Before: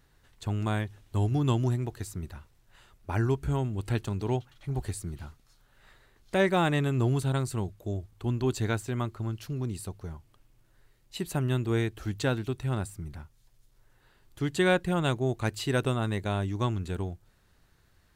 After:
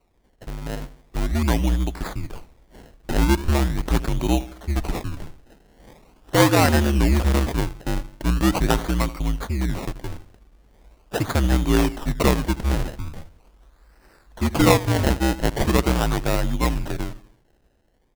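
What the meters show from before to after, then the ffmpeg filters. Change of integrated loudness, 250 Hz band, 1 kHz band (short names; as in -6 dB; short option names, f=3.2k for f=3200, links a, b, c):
+7.5 dB, +8.0 dB, +9.0 dB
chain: -filter_complex "[0:a]equalizer=f=4.4k:t=o:w=0.98:g=10.5,dynaudnorm=f=210:g=13:m=11.5dB,asplit=2[a][b];[b]adelay=81,lowpass=f=1.8k:p=1,volume=-15.5dB,asplit=2[c][d];[d]adelay=81,lowpass=f=1.8k:p=1,volume=0.45,asplit=2[e][f];[f]adelay=81,lowpass=f=1.8k:p=1,volume=0.45,asplit=2[g][h];[h]adelay=81,lowpass=f=1.8k:p=1,volume=0.45[i];[c][e][g][i]amix=inputs=4:normalize=0[j];[a][j]amix=inputs=2:normalize=0,afreqshift=-64,acrusher=samples=26:mix=1:aa=0.000001:lfo=1:lforange=26:lforate=0.41,volume=-2dB"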